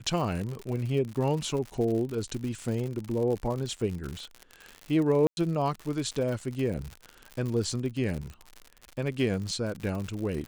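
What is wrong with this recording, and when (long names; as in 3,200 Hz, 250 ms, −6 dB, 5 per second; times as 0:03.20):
surface crackle 95 per second −33 dBFS
0:05.27–0:05.37: drop-out 101 ms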